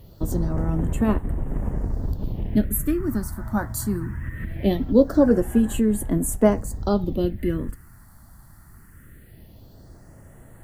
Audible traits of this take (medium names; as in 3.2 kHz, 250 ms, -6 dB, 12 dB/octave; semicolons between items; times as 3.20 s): a quantiser's noise floor 10-bit, dither none; phasing stages 4, 0.21 Hz, lowest notch 450–4900 Hz